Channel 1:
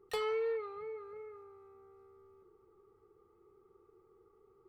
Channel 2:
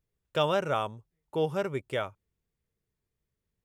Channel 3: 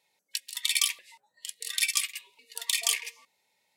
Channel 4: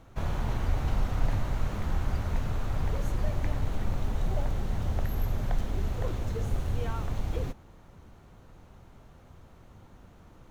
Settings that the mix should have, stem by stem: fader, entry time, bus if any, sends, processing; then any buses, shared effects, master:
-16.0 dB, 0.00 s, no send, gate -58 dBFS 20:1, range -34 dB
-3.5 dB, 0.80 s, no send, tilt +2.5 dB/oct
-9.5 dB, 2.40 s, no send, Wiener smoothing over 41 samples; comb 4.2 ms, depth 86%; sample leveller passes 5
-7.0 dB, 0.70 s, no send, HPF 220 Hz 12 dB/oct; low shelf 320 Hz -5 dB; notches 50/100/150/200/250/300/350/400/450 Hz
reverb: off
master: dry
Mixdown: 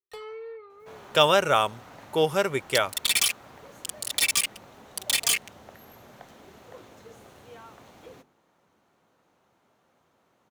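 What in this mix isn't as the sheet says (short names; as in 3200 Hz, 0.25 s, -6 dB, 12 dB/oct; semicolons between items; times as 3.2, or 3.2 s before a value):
stem 1 -16.0 dB -> -5.5 dB; stem 2 -3.5 dB -> +8.0 dB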